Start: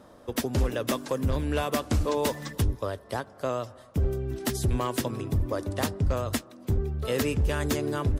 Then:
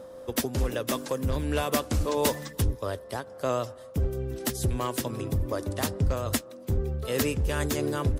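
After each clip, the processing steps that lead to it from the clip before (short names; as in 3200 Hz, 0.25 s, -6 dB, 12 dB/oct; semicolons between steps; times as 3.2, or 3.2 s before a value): high shelf 5500 Hz +5.5 dB; whine 520 Hz -42 dBFS; noise-modulated level, depth 60%; gain +2.5 dB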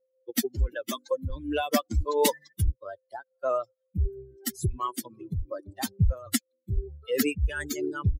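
per-bin expansion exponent 3; gain +6.5 dB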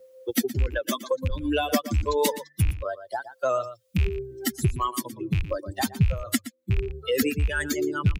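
rattling part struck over -29 dBFS, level -31 dBFS; outdoor echo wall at 20 m, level -14 dB; three-band squash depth 70%; gain +3 dB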